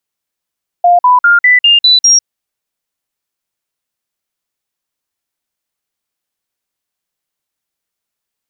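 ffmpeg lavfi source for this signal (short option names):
-f lavfi -i "aevalsrc='0.668*clip(min(mod(t,0.2),0.15-mod(t,0.2))/0.005,0,1)*sin(2*PI*703*pow(2,floor(t/0.2)/2)*mod(t,0.2))':d=1.4:s=44100"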